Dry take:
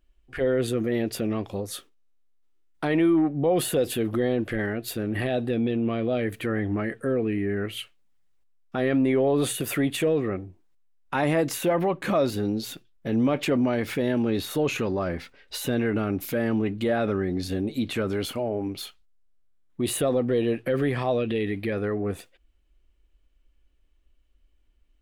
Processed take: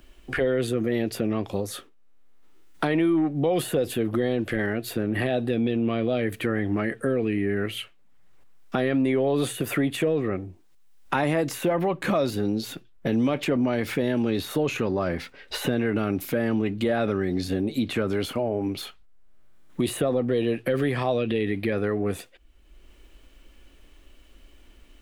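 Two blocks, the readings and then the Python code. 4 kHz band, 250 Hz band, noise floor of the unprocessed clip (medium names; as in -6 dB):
+0.5 dB, +0.5 dB, -64 dBFS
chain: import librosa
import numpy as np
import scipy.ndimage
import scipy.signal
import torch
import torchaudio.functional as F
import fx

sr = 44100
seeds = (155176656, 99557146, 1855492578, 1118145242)

y = fx.band_squash(x, sr, depth_pct=70)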